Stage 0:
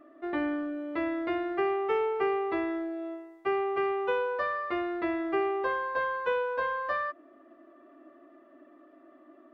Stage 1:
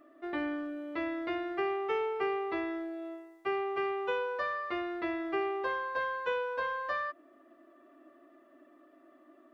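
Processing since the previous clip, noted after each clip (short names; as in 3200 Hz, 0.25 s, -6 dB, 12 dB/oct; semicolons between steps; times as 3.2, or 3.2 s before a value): high shelf 3100 Hz +9.5 dB; gain -4.5 dB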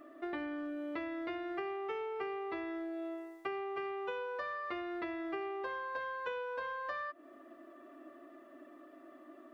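compressor 6:1, threshold -42 dBFS, peak gain reduction 13 dB; gain +4.5 dB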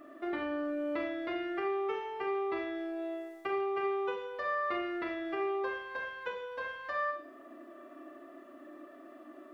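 Schroeder reverb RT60 0.55 s, combs from 29 ms, DRR 2 dB; gain +2 dB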